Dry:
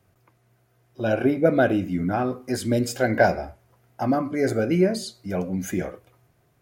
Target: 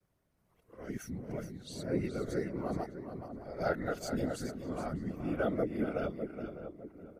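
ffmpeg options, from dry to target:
ffmpeg -i in.wav -filter_complex "[0:a]areverse,asplit=2[link_01][link_02];[link_02]adelay=556,lowpass=frequency=1300:poles=1,volume=-10dB,asplit=2[link_03][link_04];[link_04]adelay=556,lowpass=frequency=1300:poles=1,volume=0.45,asplit=2[link_05][link_06];[link_06]adelay=556,lowpass=frequency=1300:poles=1,volume=0.45,asplit=2[link_07][link_08];[link_08]adelay=556,lowpass=frequency=1300:poles=1,volume=0.45,asplit=2[link_09][link_10];[link_10]adelay=556,lowpass=frequency=1300:poles=1,volume=0.45[link_11];[link_03][link_05][link_07][link_09][link_11]amix=inputs=5:normalize=0[link_12];[link_01][link_12]amix=inputs=2:normalize=0,afftfilt=real='hypot(re,im)*cos(2*PI*random(0))':imag='hypot(re,im)*sin(2*PI*random(1))':win_size=512:overlap=0.75,asplit=2[link_13][link_14];[link_14]aecho=0:1:387:0.335[link_15];[link_13][link_15]amix=inputs=2:normalize=0,asetrate=40517,aresample=44100,volume=-7.5dB" out.wav

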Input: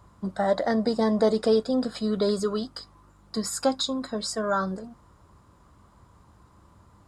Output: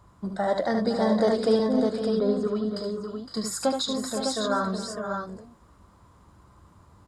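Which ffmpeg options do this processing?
ffmpeg -i in.wav -filter_complex "[0:a]asettb=1/sr,asplit=3[link_01][link_02][link_03];[link_01]atrim=end=1.594[link_04];[link_02]atrim=start=1.59:end=2.71,asetpts=PTS-STARTPTS,afade=type=in:duration=0.004:curve=qsin,afade=type=out:start_time=1.116:duration=0.004:curve=qsin,lowpass=frequency=1100:poles=1[link_05];[link_03]atrim=start=2.706[link_06];[link_04][link_05]acrossfade=duration=0.004:curve1=hsin:curve2=qsin[link_07];[link_07][link_06]acrossfade=duration=0.004:curve1=qsin:curve2=hsin,aecho=1:1:74|272|512|543|604:0.501|0.15|0.316|0.211|0.531,volume=-1.5dB" out.wav

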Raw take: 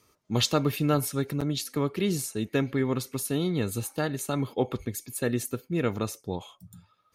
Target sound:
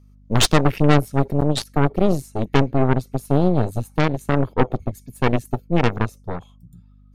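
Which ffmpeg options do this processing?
ffmpeg -i in.wav -af "afwtdn=0.0178,aeval=exprs='val(0)+0.00178*(sin(2*PI*50*n/s)+sin(2*PI*2*50*n/s)/2+sin(2*PI*3*50*n/s)/3+sin(2*PI*4*50*n/s)/4+sin(2*PI*5*50*n/s)/5)':channel_layout=same,aeval=exprs='0.266*(cos(1*acos(clip(val(0)/0.266,-1,1)))-cos(1*PI/2))+0.0841*(cos(4*acos(clip(val(0)/0.266,-1,1)))-cos(4*PI/2))+0.0299*(cos(8*acos(clip(val(0)/0.266,-1,1)))-cos(8*PI/2))':channel_layout=same,volume=6.5dB" out.wav

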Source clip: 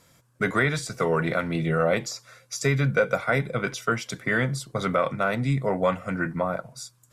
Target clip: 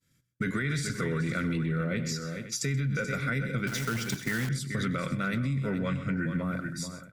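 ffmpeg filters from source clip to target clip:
ffmpeg -i in.wav -filter_complex "[0:a]asettb=1/sr,asplit=3[link_01][link_02][link_03];[link_01]atrim=end=1.574[link_04];[link_02]atrim=start=1.57:end=2.09,asetpts=PTS-STARTPTS,afade=type=in:duration=0.004:curve=qsin,afade=type=out:start_time=0.516:duration=0.004:curve=qsin,highshelf=frequency=3300:gain=-9.5[link_05];[link_03]atrim=start=2.086[link_06];[link_04][link_05]acrossfade=duration=0.004:curve1=hsin:curve2=qsin[link_07];[link_07][link_06]acrossfade=duration=0.004:curve1=qsin:curve2=hsin,asettb=1/sr,asplit=3[link_08][link_09][link_10];[link_08]atrim=end=5.704[link_11];[link_09]atrim=start=5.7:end=6.19,asetpts=PTS-STARTPTS,afade=type=in:duration=0.004:curve=qsin,afade=type=out:start_time=0.486:duration=0.004:curve=qsin,lowpass=5300[link_12];[link_10]atrim=start=6.186[link_13];[link_11][link_12]acrossfade=duration=0.004:curve1=hsin:curve2=qsin[link_14];[link_14][link_13]acrossfade=duration=0.004:curve1=qsin:curve2=hsin,agate=range=-33dB:threshold=-49dB:ratio=3:detection=peak,firequalizer=gain_entry='entry(250,0);entry(750,-23);entry(1500,-4)':delay=0.05:min_phase=1,asplit=2[link_15][link_16];[link_16]aecho=0:1:96|130|432|523:0.106|0.178|0.251|0.112[link_17];[link_15][link_17]amix=inputs=2:normalize=0,asettb=1/sr,asplit=3[link_18][link_19][link_20];[link_18]atrim=end=3.674[link_21];[link_19]atrim=start=3.67:end=4.49,asetpts=PTS-STARTPTS,afade=type=in:duration=0.004:curve=qsin,afade=type=out:start_time=0.816:duration=0.004:curve=qsin,acrusher=bits=2:mode=log:mix=0:aa=0.000001[link_22];[link_20]atrim=start=4.486[link_23];[link_21][link_22]acrossfade=duration=0.004:curve1=hsin:curve2=qsin[link_24];[link_24][link_23]acrossfade=duration=0.004:curve1=qsin:curve2=hsin,alimiter=limit=-22.5dB:level=0:latency=1:release=19,acompressor=threshold=-30dB:ratio=6,volume=4dB" out.wav

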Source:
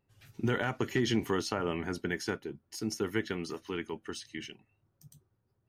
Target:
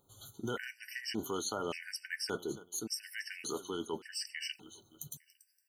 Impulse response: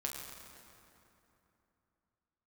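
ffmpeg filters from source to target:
-af "bass=frequency=250:gain=-7,treble=frequency=4000:gain=12,aecho=1:1:285|570|855:0.0794|0.0373|0.0175,areverse,acompressor=threshold=-44dB:ratio=4,areverse,afftfilt=real='re*gt(sin(2*PI*0.87*pts/sr)*(1-2*mod(floor(b*sr/1024/1500),2)),0)':imag='im*gt(sin(2*PI*0.87*pts/sr)*(1-2*mod(floor(b*sr/1024/1500),2)),0)':win_size=1024:overlap=0.75,volume=9dB"

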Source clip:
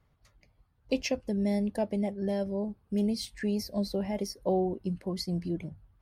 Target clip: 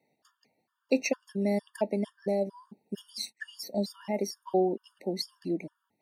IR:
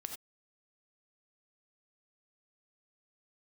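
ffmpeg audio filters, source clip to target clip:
-filter_complex "[0:a]highpass=frequency=220:width=0.5412,highpass=frequency=220:width=1.3066,asplit=3[link_01][link_02][link_03];[link_01]afade=type=out:start_time=3.22:duration=0.02[link_04];[link_02]agate=range=-28dB:threshold=-43dB:ratio=16:detection=peak,afade=type=in:start_time=3.22:duration=0.02,afade=type=out:start_time=4.35:duration=0.02[link_05];[link_03]afade=type=in:start_time=4.35:duration=0.02[link_06];[link_04][link_05][link_06]amix=inputs=3:normalize=0,afftfilt=real='re*gt(sin(2*PI*2.2*pts/sr)*(1-2*mod(floor(b*sr/1024/920),2)),0)':imag='im*gt(sin(2*PI*2.2*pts/sr)*(1-2*mod(floor(b*sr/1024/920),2)),0)':win_size=1024:overlap=0.75,volume=4dB"

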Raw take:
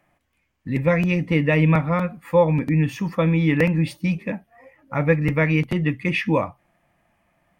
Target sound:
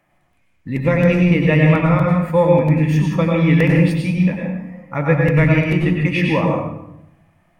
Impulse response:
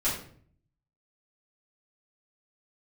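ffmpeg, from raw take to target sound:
-filter_complex "[0:a]asplit=2[link_01][link_02];[1:a]atrim=start_sample=2205,asetrate=25578,aresample=44100,adelay=89[link_03];[link_02][link_03]afir=irnorm=-1:irlink=0,volume=-12.5dB[link_04];[link_01][link_04]amix=inputs=2:normalize=0,volume=1dB"

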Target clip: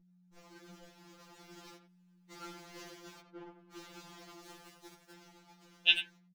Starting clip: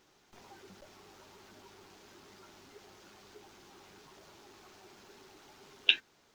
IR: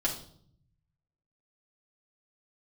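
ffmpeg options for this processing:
-filter_complex "[0:a]asettb=1/sr,asplit=3[link_01][link_02][link_03];[link_01]atrim=end=3.204[link_04];[link_02]atrim=start=3.2:end=3.72,asetpts=PTS-STARTPTS,afade=type=in:duration=0.004:curve=qsin,afade=type=out:start_time=0.516:duration=0.004:curve=qsin,lowpass=1500[link_05];[link_03]atrim=start=3.716[link_06];[link_04][link_05]acrossfade=duration=0.004:curve1=hsin:curve2=qsin[link_07];[link_07][link_06]acrossfade=duration=0.004:curve1=qsin:curve2=hsin,agate=range=-26dB:threshold=-56dB:ratio=16:detection=peak,dynaudnorm=framelen=440:gausssize=7:maxgain=11.5dB,asplit=3[link_08][link_09][link_10];[link_08]afade=type=out:start_time=1.76:duration=0.02[link_11];[link_09]aeval=exprs='(tanh(12600*val(0)+0.2)-tanh(0.2))/12600':channel_layout=same,afade=type=in:start_time=1.76:duration=0.02,afade=type=out:start_time=2.3:duration=0.02[link_12];[link_10]afade=type=in:start_time=2.3:duration=0.02[link_13];[link_11][link_12][link_13]amix=inputs=3:normalize=0,aeval=exprs='val(0)+0.00112*(sin(2*PI*60*n/s)+sin(2*PI*2*60*n/s)/2+sin(2*PI*3*60*n/s)/3+sin(2*PI*4*60*n/s)/4+sin(2*PI*5*60*n/s)/5)':channel_layout=same,asettb=1/sr,asplit=3[link_14][link_15][link_16];[link_14]atrim=end=4.434[link_17];[link_15]atrim=start=4.43:end=5.13,asetpts=PTS-STARTPTS,afade=type=in:duration=0.004:curve=qsin,afade=type=out:start_time=0.696:duration=0.004:curve=qsin,acrusher=bits=7:mix=0:aa=0.5[link_18];[link_16]atrim=start=5.126[link_19];[link_17][link_18]acrossfade=duration=0.004:curve1=hsin:curve2=qsin[link_20];[link_20][link_19]acrossfade=duration=0.004:curve1=qsin:curve2=hsin,asplit=2[link_21][link_22];[link_22]adelay=90,highpass=300,lowpass=3400,asoftclip=type=hard:threshold=-11.5dB,volume=-9dB[link_23];[link_21][link_23]amix=inputs=2:normalize=0,afftfilt=real='re*2.83*eq(mod(b,8),0)':imag='im*2.83*eq(mod(b,8),0)':win_size=2048:overlap=0.75"

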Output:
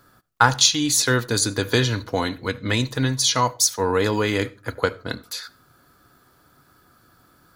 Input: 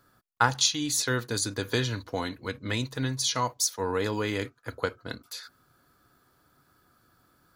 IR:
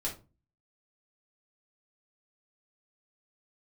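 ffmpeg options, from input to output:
-filter_complex "[0:a]acontrast=50,asplit=2[link_01][link_02];[1:a]atrim=start_sample=2205,adelay=71[link_03];[link_02][link_03]afir=irnorm=-1:irlink=0,volume=-25dB[link_04];[link_01][link_04]amix=inputs=2:normalize=0,volume=2dB"

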